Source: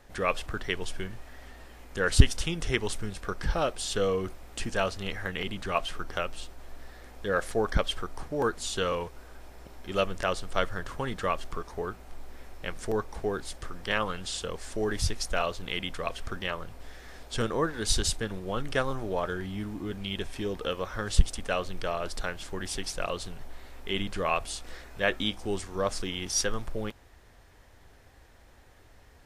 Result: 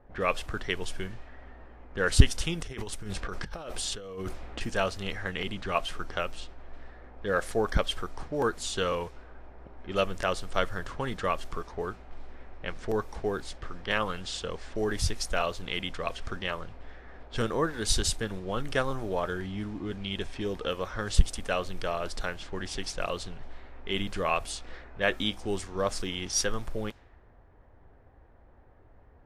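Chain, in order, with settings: low-pass opened by the level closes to 940 Hz, open at -27.5 dBFS; 2.61–4.61 negative-ratio compressor -36 dBFS, ratio -1

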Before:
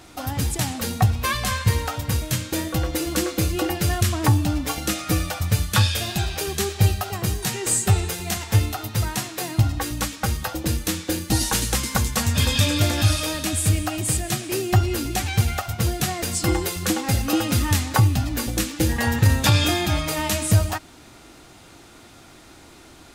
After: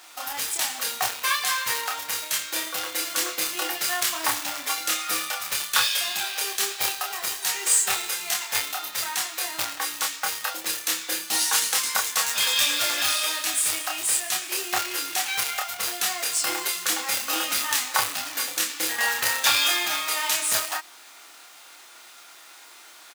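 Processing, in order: companded quantiser 4-bit; HPF 960 Hz 12 dB/oct; doubler 28 ms -3 dB

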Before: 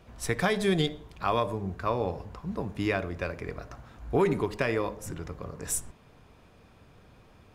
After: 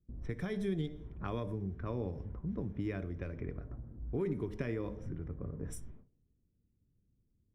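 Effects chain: gate with hold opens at -42 dBFS; low-pass opened by the level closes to 300 Hz, open at -27 dBFS; passive tone stack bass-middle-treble 10-0-1; compressor 5:1, threshold -51 dBFS, peak gain reduction 11.5 dB; reverb RT60 0.40 s, pre-delay 3 ms, DRR 19.5 dB; gain +8.5 dB

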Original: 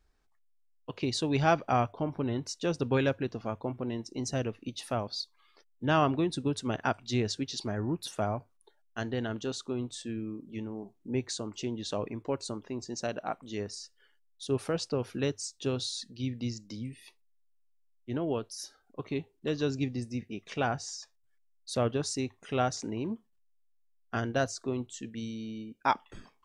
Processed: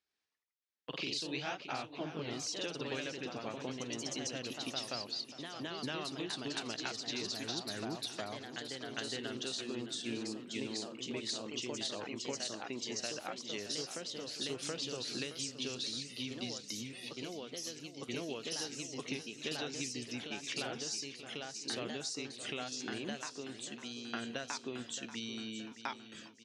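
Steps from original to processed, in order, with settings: HPF 93 Hz; gate -54 dBFS, range -14 dB; weighting filter D; compressor 10:1, threshold -35 dBFS, peak gain reduction 18 dB; feedback echo 0.621 s, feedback 52%, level -12 dB; echoes that change speed 98 ms, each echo +1 st, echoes 2; gain -2.5 dB

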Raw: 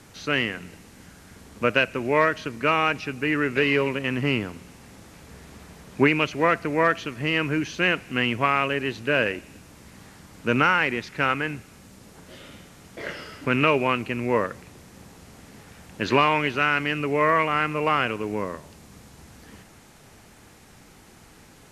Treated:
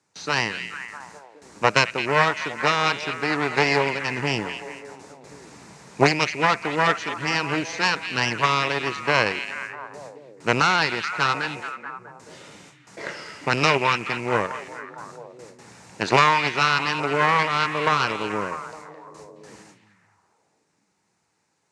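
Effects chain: gate with hold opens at -36 dBFS; high shelf 4500 Hz +8.5 dB; in parallel at -9 dB: short-mantissa float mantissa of 2-bit; on the sum: added harmonics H 4 -7 dB, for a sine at -0.5 dBFS; speaker cabinet 150–8100 Hz, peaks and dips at 250 Hz -6 dB, 930 Hz +6 dB, 3200 Hz -7 dB; on a send: delay with a stepping band-pass 0.215 s, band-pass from 2700 Hz, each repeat -0.7 oct, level -6 dB; on the sum: gain -3 dB

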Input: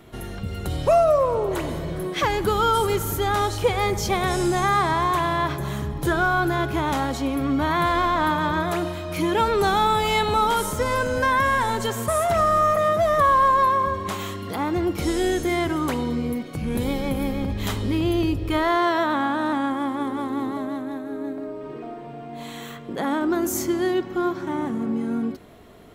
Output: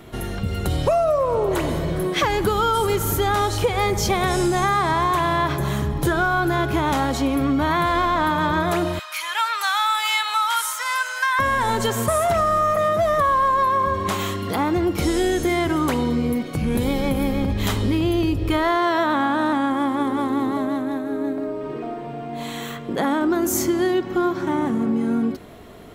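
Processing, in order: 8.99–11.39 HPF 1100 Hz 24 dB/oct; compressor, threshold -22 dBFS, peak gain reduction 8 dB; gain +5.5 dB

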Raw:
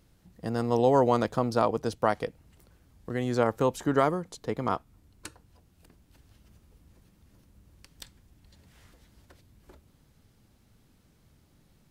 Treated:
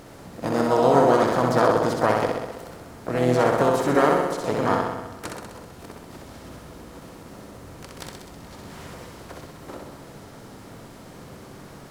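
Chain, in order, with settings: per-bin compression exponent 0.6; flutter echo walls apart 11 m, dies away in 1.1 s; harmoniser +5 st -6 dB

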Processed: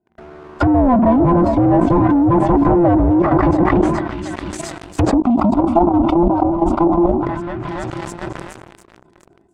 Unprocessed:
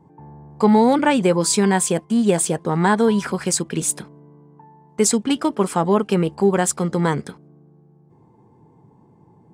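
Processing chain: band inversion scrambler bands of 500 Hz; high shelf 10000 Hz -5 dB; swung echo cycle 0.705 s, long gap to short 1.5:1, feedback 35%, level -14 dB; sample leveller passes 5; treble ducked by the level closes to 590 Hz, closed at -6 dBFS; 5.14–7.23 fixed phaser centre 460 Hz, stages 6; level quantiser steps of 12 dB; dynamic EQ 770 Hz, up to +6 dB, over -28 dBFS, Q 1; sustainer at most 41 dB/s; gain -1.5 dB

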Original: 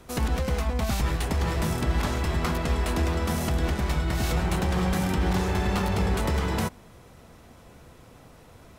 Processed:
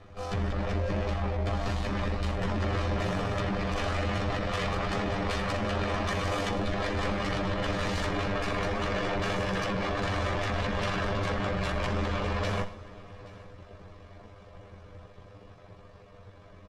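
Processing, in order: minimum comb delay 1.7 ms; Doppler pass-by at 3.95, 9 m/s, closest 9.3 m; Chebyshev low-pass 4900 Hz, order 2; high shelf 2900 Hz -11.5 dB; limiter -28.5 dBFS, peak gain reduction 10.5 dB; sine folder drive 12 dB, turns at -25.5 dBFS; granular stretch 1.9×, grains 42 ms; echo 0.825 s -21.5 dB; on a send at -11.5 dB: reverb, pre-delay 3 ms

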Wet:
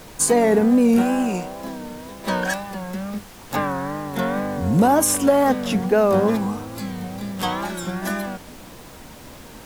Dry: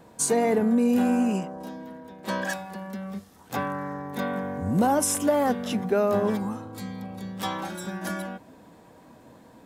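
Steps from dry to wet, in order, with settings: 1.01–1.64 low shelf 220 Hz -10.5 dB; added noise pink -49 dBFS; wow and flutter 91 cents; gain +6 dB

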